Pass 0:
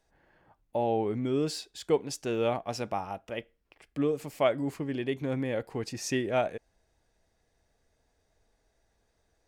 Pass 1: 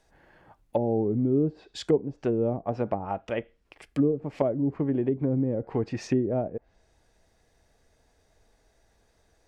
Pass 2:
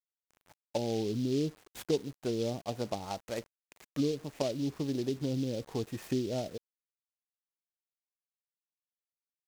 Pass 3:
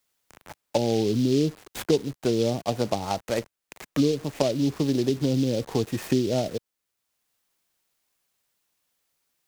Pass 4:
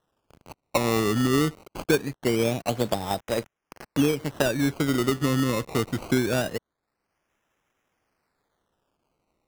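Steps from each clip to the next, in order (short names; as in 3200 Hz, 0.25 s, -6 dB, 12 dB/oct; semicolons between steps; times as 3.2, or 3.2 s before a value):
treble ducked by the level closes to 380 Hz, closed at -27 dBFS; gain +7 dB
requantised 8-bit, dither none; noise-modulated delay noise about 4000 Hz, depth 0.06 ms; gain -7 dB
three-band squash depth 40%; gain +9 dB
decimation with a swept rate 19×, swing 100% 0.23 Hz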